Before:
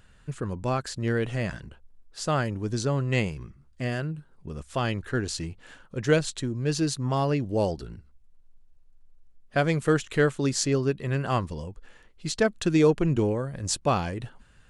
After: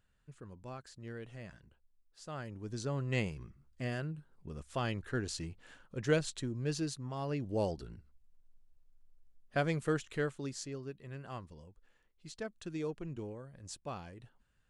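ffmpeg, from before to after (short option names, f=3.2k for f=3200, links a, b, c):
-af "volume=-0.5dB,afade=t=in:st=2.29:d=0.92:silence=0.281838,afade=t=out:st=6.62:d=0.52:silence=0.421697,afade=t=in:st=7.14:d=0.37:silence=0.421697,afade=t=out:st=9.57:d=1.15:silence=0.298538"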